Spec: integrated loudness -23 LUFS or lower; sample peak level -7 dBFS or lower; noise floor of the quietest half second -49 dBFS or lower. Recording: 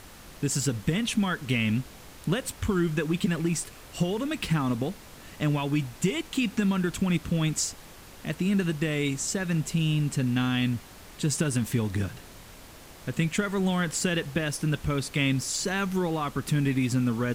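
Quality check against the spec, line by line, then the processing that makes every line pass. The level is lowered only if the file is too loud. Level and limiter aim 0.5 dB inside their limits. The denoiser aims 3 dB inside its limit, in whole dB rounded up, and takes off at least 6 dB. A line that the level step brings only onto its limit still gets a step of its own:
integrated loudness -27.5 LUFS: pass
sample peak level -11.0 dBFS: pass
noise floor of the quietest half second -47 dBFS: fail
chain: noise reduction 6 dB, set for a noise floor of -47 dBFS

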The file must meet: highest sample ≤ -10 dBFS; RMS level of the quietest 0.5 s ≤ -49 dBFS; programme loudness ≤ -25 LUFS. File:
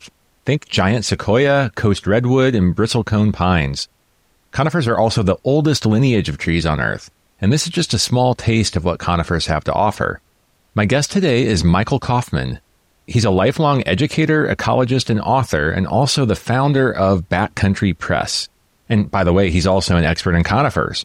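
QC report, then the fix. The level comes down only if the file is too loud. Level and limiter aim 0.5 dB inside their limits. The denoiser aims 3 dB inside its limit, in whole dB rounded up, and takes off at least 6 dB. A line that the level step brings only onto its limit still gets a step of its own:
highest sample -5.0 dBFS: fail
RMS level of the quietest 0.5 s -60 dBFS: pass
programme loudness -16.5 LUFS: fail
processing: trim -9 dB

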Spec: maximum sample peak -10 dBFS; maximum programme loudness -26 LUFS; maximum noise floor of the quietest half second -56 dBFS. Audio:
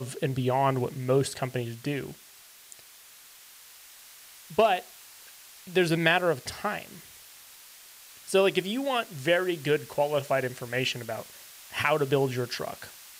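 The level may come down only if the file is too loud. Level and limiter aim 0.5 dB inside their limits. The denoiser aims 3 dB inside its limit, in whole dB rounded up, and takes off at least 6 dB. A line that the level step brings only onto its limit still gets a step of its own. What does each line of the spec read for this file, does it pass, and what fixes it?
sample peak -9.5 dBFS: fail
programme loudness -27.5 LUFS: pass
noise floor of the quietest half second -52 dBFS: fail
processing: noise reduction 7 dB, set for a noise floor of -52 dBFS; peak limiter -10.5 dBFS

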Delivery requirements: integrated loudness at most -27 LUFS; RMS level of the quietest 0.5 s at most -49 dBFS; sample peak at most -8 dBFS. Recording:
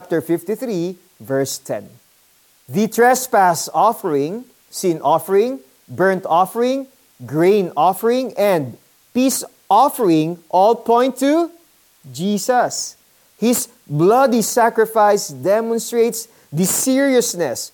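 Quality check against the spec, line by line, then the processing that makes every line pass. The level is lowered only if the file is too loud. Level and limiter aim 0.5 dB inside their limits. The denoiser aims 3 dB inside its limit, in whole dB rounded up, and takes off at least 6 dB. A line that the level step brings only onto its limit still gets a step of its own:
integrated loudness -17.0 LUFS: fail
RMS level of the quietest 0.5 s -55 dBFS: pass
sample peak -3.5 dBFS: fail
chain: trim -10.5 dB

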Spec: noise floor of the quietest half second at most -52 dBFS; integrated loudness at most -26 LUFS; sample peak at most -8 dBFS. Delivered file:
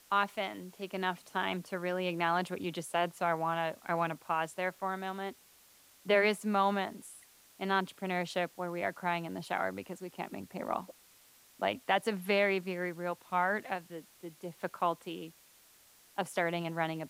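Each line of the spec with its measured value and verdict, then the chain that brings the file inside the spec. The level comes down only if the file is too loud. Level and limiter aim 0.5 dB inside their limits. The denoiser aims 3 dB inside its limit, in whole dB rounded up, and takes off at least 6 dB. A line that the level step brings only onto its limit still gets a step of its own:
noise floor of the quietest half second -62 dBFS: pass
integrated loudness -34.0 LUFS: pass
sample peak -15.0 dBFS: pass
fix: none needed

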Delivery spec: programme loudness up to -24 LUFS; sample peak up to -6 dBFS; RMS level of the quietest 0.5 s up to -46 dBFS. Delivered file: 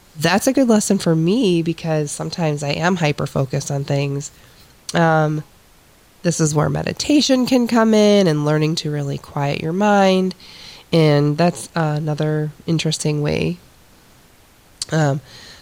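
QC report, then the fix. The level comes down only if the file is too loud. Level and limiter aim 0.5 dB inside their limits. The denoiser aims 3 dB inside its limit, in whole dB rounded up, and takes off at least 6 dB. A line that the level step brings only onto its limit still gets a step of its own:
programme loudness -18.0 LUFS: fail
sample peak -4.5 dBFS: fail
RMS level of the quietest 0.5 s -50 dBFS: pass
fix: trim -6.5 dB

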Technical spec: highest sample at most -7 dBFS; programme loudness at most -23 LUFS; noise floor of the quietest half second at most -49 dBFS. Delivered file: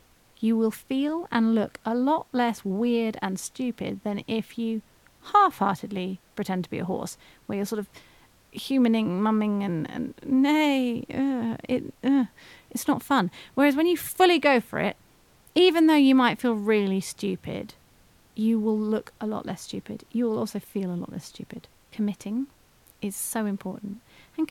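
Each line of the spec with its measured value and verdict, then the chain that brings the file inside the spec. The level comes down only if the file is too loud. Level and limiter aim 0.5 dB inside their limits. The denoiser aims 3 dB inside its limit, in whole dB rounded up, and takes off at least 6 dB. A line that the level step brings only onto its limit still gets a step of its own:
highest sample -5.5 dBFS: fail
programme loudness -25.5 LUFS: pass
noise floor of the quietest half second -58 dBFS: pass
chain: peak limiter -7.5 dBFS

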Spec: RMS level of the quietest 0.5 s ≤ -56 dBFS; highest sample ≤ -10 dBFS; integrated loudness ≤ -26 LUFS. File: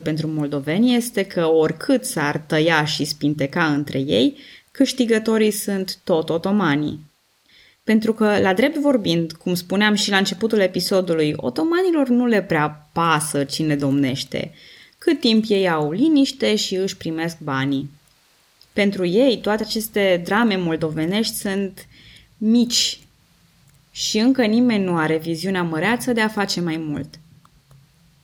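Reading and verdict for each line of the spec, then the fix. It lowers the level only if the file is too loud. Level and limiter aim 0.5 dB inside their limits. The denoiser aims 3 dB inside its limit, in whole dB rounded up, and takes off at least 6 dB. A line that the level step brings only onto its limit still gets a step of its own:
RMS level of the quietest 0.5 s -58 dBFS: pass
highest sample -4.0 dBFS: fail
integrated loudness -19.5 LUFS: fail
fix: trim -7 dB

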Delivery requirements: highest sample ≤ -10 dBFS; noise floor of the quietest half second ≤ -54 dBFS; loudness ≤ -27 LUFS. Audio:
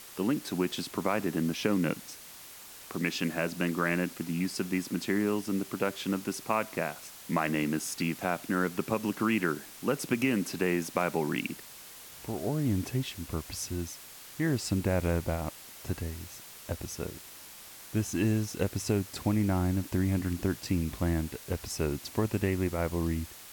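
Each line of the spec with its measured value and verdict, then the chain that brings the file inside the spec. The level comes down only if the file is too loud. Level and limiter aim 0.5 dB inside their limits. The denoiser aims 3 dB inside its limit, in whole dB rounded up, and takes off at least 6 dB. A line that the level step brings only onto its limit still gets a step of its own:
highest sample -13.5 dBFS: pass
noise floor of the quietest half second -48 dBFS: fail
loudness -31.5 LUFS: pass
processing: noise reduction 9 dB, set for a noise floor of -48 dBFS

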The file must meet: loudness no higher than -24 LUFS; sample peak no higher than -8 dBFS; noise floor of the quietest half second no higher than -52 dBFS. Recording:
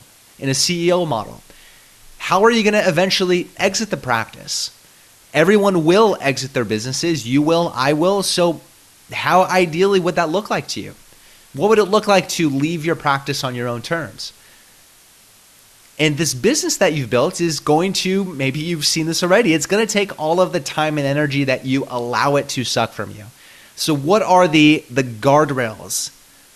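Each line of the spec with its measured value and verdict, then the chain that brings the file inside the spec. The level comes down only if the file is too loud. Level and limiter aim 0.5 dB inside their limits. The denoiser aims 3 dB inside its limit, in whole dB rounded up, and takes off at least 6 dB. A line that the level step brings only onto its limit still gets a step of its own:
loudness -17.0 LUFS: fail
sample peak -2.5 dBFS: fail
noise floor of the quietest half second -49 dBFS: fail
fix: trim -7.5 dB

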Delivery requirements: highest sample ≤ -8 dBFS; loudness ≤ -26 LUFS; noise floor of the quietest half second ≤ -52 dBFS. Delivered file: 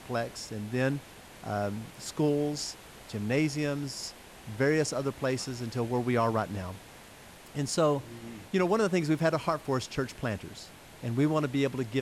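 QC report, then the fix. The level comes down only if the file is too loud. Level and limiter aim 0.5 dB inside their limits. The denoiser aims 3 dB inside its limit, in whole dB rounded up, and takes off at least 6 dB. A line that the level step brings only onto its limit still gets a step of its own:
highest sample -15.5 dBFS: pass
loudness -30.5 LUFS: pass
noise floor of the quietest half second -50 dBFS: fail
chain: noise reduction 6 dB, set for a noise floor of -50 dBFS

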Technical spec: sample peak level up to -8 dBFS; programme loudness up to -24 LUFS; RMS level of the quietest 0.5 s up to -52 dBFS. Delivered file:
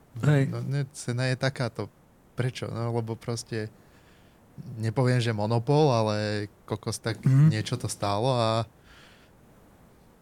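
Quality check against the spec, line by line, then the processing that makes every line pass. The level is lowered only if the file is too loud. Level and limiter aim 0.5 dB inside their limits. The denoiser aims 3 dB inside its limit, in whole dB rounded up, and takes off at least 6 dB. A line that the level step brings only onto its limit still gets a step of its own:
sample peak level -9.5 dBFS: pass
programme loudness -27.0 LUFS: pass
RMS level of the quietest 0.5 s -57 dBFS: pass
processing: none needed

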